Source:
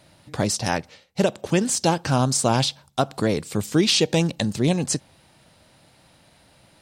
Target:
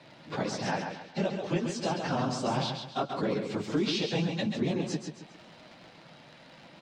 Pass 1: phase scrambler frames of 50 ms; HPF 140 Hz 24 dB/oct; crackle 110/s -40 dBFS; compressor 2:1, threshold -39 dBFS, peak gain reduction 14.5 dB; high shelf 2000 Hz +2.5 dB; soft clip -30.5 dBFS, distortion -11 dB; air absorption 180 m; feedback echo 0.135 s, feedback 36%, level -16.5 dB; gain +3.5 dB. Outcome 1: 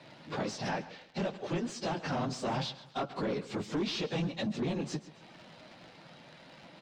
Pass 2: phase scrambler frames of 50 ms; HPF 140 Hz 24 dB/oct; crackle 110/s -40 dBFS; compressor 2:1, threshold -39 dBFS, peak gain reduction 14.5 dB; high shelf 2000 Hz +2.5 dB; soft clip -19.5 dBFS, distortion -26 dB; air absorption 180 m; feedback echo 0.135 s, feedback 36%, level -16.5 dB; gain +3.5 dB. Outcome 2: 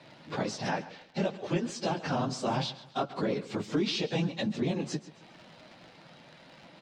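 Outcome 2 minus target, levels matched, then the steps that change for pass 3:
echo-to-direct -10.5 dB
change: feedback echo 0.135 s, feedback 36%, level -6 dB

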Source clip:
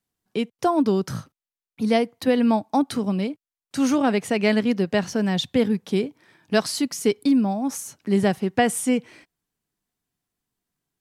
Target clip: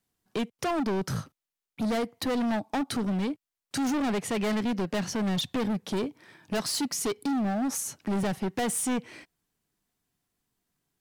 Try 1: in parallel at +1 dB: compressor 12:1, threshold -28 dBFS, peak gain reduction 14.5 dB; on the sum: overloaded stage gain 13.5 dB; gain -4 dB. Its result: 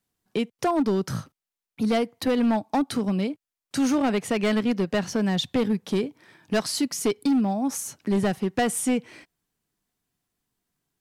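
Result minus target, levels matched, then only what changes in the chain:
overloaded stage: distortion -9 dB
change: overloaded stage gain 21.5 dB

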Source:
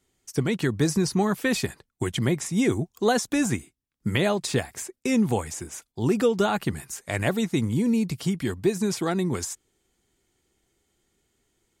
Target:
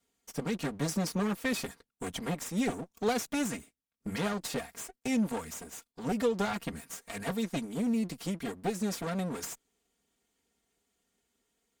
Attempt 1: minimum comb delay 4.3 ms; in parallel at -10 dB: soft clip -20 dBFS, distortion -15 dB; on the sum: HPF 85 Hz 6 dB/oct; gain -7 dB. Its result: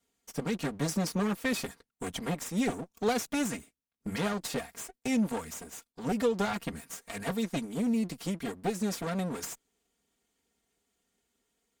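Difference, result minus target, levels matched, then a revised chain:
soft clip: distortion -9 dB
minimum comb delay 4.3 ms; in parallel at -10 dB: soft clip -31 dBFS, distortion -6 dB; on the sum: HPF 85 Hz 6 dB/oct; gain -7 dB

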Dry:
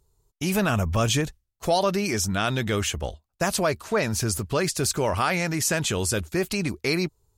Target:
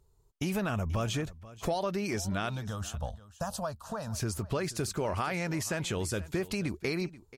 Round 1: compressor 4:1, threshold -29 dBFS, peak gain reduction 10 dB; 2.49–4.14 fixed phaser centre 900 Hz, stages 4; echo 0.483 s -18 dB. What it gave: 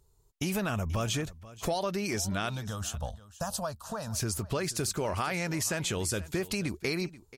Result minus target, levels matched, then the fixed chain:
8000 Hz band +4.0 dB
compressor 4:1, threshold -29 dBFS, peak gain reduction 10 dB; high shelf 3400 Hz -6.5 dB; 2.49–4.14 fixed phaser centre 900 Hz, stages 4; echo 0.483 s -18 dB

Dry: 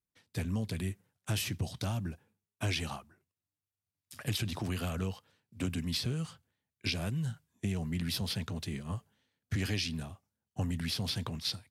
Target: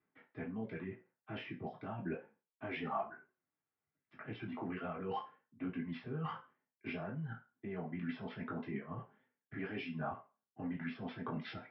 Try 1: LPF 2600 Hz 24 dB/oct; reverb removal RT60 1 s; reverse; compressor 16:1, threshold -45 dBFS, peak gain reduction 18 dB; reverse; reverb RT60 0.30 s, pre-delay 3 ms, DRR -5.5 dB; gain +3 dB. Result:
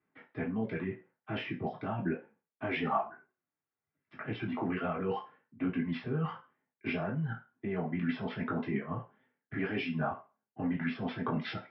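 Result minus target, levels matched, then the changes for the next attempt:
compressor: peak gain reduction -8 dB
change: compressor 16:1, threshold -53.5 dBFS, peak gain reduction 26 dB

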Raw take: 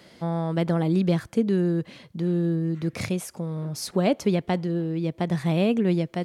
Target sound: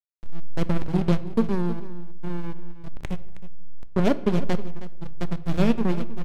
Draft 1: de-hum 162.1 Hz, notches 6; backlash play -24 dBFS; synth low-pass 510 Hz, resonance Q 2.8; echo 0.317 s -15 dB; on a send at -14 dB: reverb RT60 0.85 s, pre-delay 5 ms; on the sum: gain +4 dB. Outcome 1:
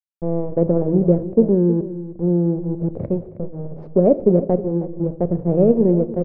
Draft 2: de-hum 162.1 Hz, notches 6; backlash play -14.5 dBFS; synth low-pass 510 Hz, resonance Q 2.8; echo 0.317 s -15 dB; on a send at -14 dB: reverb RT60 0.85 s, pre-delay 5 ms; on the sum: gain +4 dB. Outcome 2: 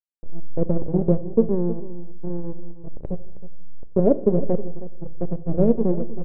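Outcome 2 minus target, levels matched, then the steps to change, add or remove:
500 Hz band +3.5 dB
remove: synth low-pass 510 Hz, resonance Q 2.8

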